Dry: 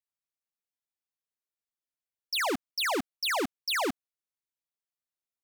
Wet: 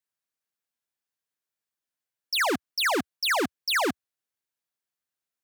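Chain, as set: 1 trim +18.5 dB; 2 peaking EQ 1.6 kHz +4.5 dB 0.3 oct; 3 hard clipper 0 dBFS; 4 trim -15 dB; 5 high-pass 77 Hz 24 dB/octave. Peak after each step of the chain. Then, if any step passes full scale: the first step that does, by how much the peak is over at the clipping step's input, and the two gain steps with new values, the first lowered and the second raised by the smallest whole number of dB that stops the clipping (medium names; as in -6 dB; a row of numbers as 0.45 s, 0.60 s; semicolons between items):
-9.5 dBFS, -4.0 dBFS, -4.0 dBFS, -19.0 dBFS, -17.5 dBFS; nothing clips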